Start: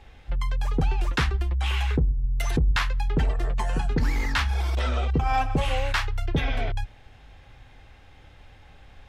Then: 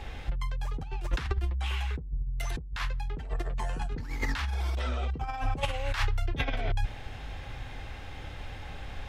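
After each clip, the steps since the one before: compressor with a negative ratio -29 dBFS, ratio -0.5; trim +1.5 dB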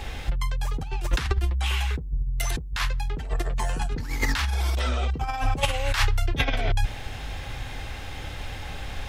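treble shelf 4.9 kHz +10 dB; trim +5.5 dB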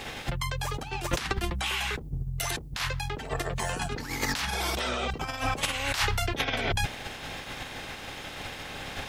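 spectral peaks clipped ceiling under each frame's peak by 20 dB; trim -6 dB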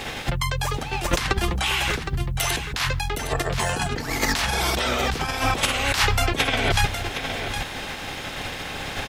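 delay 764 ms -8.5 dB; trim +6.5 dB

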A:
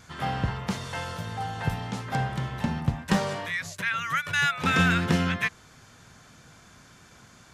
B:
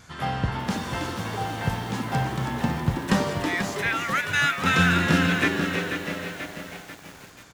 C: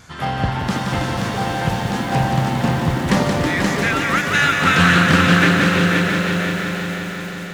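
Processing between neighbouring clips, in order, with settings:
on a send: frequency-shifting echo 323 ms, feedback 53%, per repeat +110 Hz, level -7 dB; on the sum: bit-crushed delay 488 ms, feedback 55%, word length 7-bit, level -8 dB; trim +1.5 dB
multi-head delay 176 ms, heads first and third, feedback 65%, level -6 dB; loudspeaker Doppler distortion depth 0.23 ms; trim +5 dB

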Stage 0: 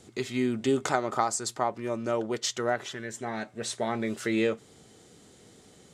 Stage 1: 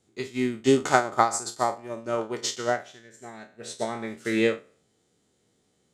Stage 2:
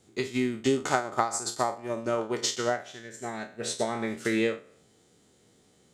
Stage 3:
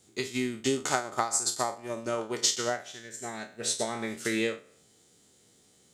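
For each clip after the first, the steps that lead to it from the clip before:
spectral sustain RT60 0.62 s; upward expansion 2.5:1, over -37 dBFS; trim +7 dB
compression 2.5:1, threshold -35 dBFS, peak gain reduction 14 dB; trim +7 dB
treble shelf 3.3 kHz +10 dB; trim -3.5 dB

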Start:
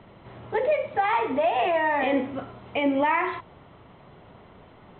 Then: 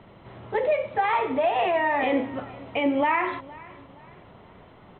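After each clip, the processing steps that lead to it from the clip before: feedback delay 467 ms, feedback 38%, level -21 dB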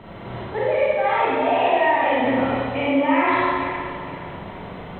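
reverse; compression 6:1, threshold -31 dBFS, peak gain reduction 12 dB; reverse; Schroeder reverb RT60 1.8 s, combs from 33 ms, DRR -7.5 dB; trim +6.5 dB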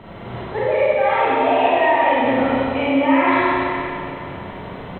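delay 179 ms -5.5 dB; trim +1.5 dB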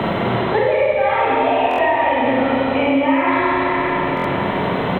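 buffer glitch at 1.69/4.15 s, samples 1024, times 3; three bands compressed up and down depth 100%

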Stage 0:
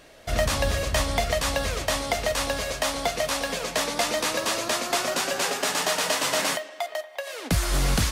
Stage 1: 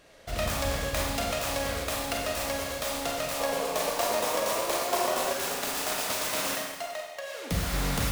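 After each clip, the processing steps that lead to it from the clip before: self-modulated delay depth 0.27 ms; Schroeder reverb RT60 1.2 s, combs from 32 ms, DRR -0.5 dB; time-frequency box 3.40–5.33 s, 350–1200 Hz +6 dB; trim -6.5 dB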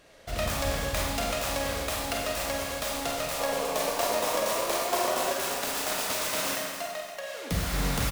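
feedback delay 283 ms, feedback 34%, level -11 dB

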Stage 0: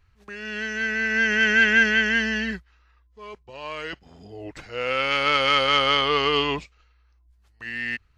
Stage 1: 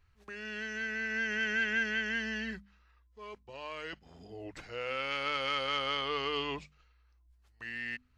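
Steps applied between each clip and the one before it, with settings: hum notches 50/100/150/200/250 Hz; compression 1.5:1, threshold -37 dBFS, peak gain reduction 8.5 dB; trim -5.5 dB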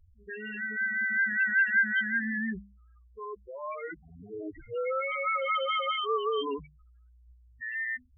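loudest bins only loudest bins 4; trim +8.5 dB

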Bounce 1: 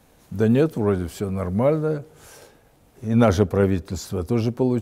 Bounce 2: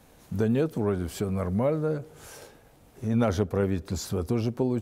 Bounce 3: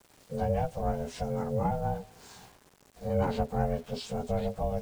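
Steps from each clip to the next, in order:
compression 2:1, threshold -26 dBFS, peak gain reduction 8.5 dB
frequency axis rescaled in octaves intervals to 89%; bit crusher 9-bit; ring modulator 330 Hz

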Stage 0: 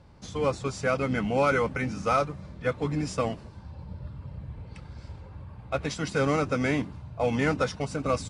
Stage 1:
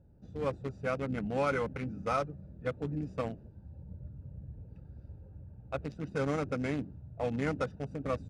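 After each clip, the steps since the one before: local Wiener filter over 41 samples; trim -6 dB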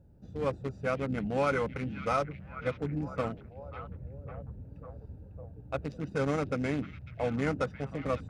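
repeats whose band climbs or falls 549 ms, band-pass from 2.7 kHz, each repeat -0.7 oct, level -8.5 dB; trim +2 dB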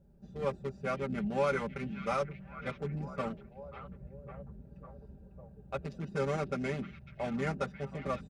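comb 5.1 ms, depth 88%; trim -4.5 dB

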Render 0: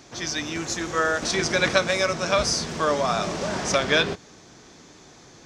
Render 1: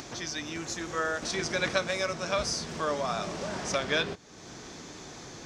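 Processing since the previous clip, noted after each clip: upward compressor, threshold -25 dBFS; trim -7.5 dB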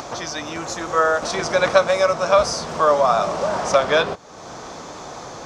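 high-order bell 810 Hz +10 dB; trim +5.5 dB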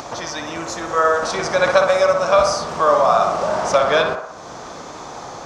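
band-passed feedback delay 61 ms, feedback 67%, band-pass 970 Hz, level -3.5 dB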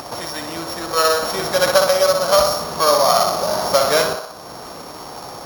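sorted samples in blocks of 8 samples

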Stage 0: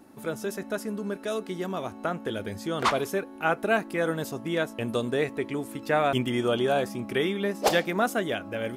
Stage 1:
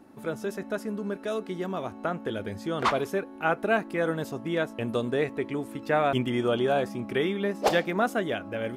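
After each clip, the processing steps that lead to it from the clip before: treble shelf 4.6 kHz -8.5 dB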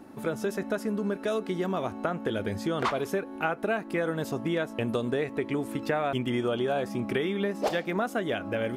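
compression 6:1, threshold -30 dBFS, peak gain reduction 12 dB; trim +5 dB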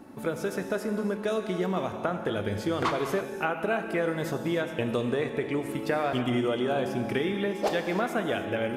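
gated-style reverb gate 340 ms flat, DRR 5.5 dB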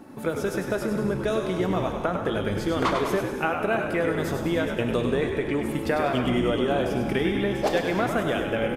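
frequency-shifting echo 100 ms, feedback 46%, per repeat -68 Hz, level -6.5 dB; trim +2.5 dB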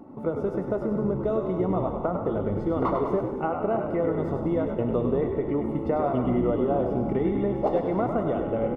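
Savitzky-Golay filter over 65 samples

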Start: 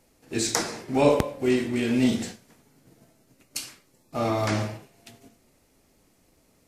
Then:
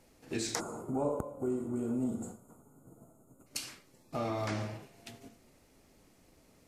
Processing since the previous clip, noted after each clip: time-frequency box 0.60–3.47 s, 1.5–6.5 kHz -24 dB; treble shelf 7.1 kHz -4.5 dB; compression 2.5:1, threshold -36 dBFS, peak gain reduction 14.5 dB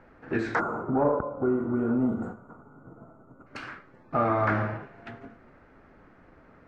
in parallel at -9.5 dB: saturation -27 dBFS, distortion -17 dB; on the sum: resonant low-pass 1.5 kHz, resonance Q 3.4; endings held to a fixed fall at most 190 dB/s; trim +5.5 dB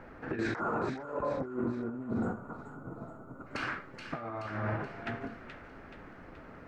compressor with a negative ratio -31 dBFS, ratio -0.5; peak limiter -24 dBFS, peak gain reduction 10.5 dB; feedback echo behind a high-pass 427 ms, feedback 51%, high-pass 2 kHz, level -5.5 dB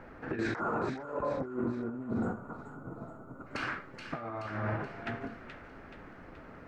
no audible change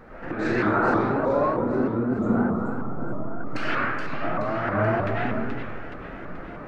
reverberation RT60 1.5 s, pre-delay 60 ms, DRR -8 dB; vibrato with a chosen wave saw up 3.2 Hz, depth 160 cents; trim +3 dB

